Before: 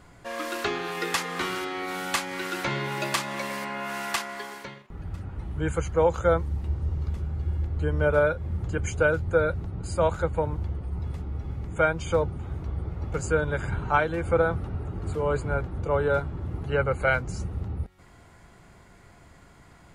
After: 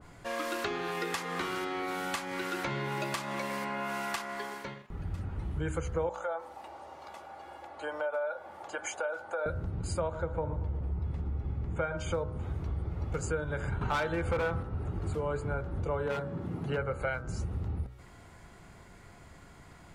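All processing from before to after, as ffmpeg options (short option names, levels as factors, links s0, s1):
-filter_complex "[0:a]asettb=1/sr,asplit=3[s0][s1][s2];[s0]atrim=end=6.094[s3];[s1]atrim=start=6.09:end=9.46,asetpts=PTS-STARTPTS,afade=t=in:d=0.004:c=qsin,afade=t=out:st=3.366:d=0.004:c=qsin,highpass=f=730:t=q:w=3.3,acompressor=threshold=0.0316:ratio=3:attack=3.2:release=140:knee=1:detection=peak,aecho=1:1:3.5:0.37,atrim=end_sample=148617[s4];[s2]atrim=start=9.456[s5];[s3][s4]acrossfade=d=0.004:c1=hsin:c2=qsin[s6];[s6][s5]acrossfade=d=0.004:c1=qsin:c2=hsin,asettb=1/sr,asplit=3[s7][s8][s9];[s7]atrim=end=10.014[s10];[s8]atrim=start=10.01:end=11.97,asetpts=PTS-STARTPTS,afade=t=in:d=0.004:c=qsin,afade=t=out:st=1.956:d=0.004:c=qsin,lowpass=f=2100:p=1,aecho=1:1:116|232|348|464|580:0.178|0.0978|0.0538|0.0296|0.0163,atrim=end_sample=86436[s11];[s9]atrim=start=11.966[s12];[s10][s11]acrossfade=d=0.004:c1=hsin:c2=qsin[s13];[s13][s12]acrossfade=d=0.004:c1=qsin:c2=hsin,asettb=1/sr,asplit=3[s14][s15][s16];[s14]atrim=end=13.814[s17];[s15]atrim=start=13.81:end=14.63,asetpts=PTS-STARTPTS,afade=t=in:d=0.004:c=qsin,afade=t=out:st=0.816:d=0.004:c=qsin,equalizer=f=2800:w=0.43:g=5.5,acontrast=82,asoftclip=type=hard:threshold=0.237[s18];[s16]atrim=start=14.626[s19];[s17][s18]acrossfade=d=0.004:c1=hsin:c2=qsin[s20];[s20][s19]acrossfade=d=0.004:c1=qsin:c2=hsin,asettb=1/sr,asplit=3[s21][s22][s23];[s21]atrim=end=16.064[s24];[s22]atrim=start=16.06:end=16.78,asetpts=PTS-STARTPTS,afade=t=in:d=0.004:c=qsin,afade=t=out:st=0.716:d=0.004:c=qsin,aeval=exprs='0.126*(abs(mod(val(0)/0.126+3,4)-2)-1)':c=same,highpass=f=170:t=q:w=1.6[s25];[s23]atrim=start=16.776[s26];[s24][s25]acrossfade=d=0.004:c1=hsin:c2=qsin[s27];[s27][s26]acrossfade=d=0.004:c1=qsin:c2=hsin,bandreject=f=62.46:t=h:w=4,bandreject=f=124.92:t=h:w=4,bandreject=f=187.38:t=h:w=4,bandreject=f=249.84:t=h:w=4,bandreject=f=312.3:t=h:w=4,bandreject=f=374.76:t=h:w=4,bandreject=f=437.22:t=h:w=4,bandreject=f=499.68:t=h:w=4,bandreject=f=562.14:t=h:w=4,bandreject=f=624.6:t=h:w=4,bandreject=f=687.06:t=h:w=4,bandreject=f=749.52:t=h:w=4,bandreject=f=811.98:t=h:w=4,bandreject=f=874.44:t=h:w=4,bandreject=f=936.9:t=h:w=4,bandreject=f=999.36:t=h:w=4,bandreject=f=1061.82:t=h:w=4,bandreject=f=1124.28:t=h:w=4,bandreject=f=1186.74:t=h:w=4,bandreject=f=1249.2:t=h:w=4,bandreject=f=1311.66:t=h:w=4,bandreject=f=1374.12:t=h:w=4,bandreject=f=1436.58:t=h:w=4,bandreject=f=1499.04:t=h:w=4,bandreject=f=1561.5:t=h:w=4,bandreject=f=1623.96:t=h:w=4,bandreject=f=1686.42:t=h:w=4,bandreject=f=1748.88:t=h:w=4,bandreject=f=1811.34:t=h:w=4,bandreject=f=1873.8:t=h:w=4,bandreject=f=1936.26:t=h:w=4,bandreject=f=1998.72:t=h:w=4,acompressor=threshold=0.0316:ratio=4,adynamicequalizer=threshold=0.00447:dfrequency=1800:dqfactor=0.7:tfrequency=1800:tqfactor=0.7:attack=5:release=100:ratio=0.375:range=2:mode=cutabove:tftype=highshelf"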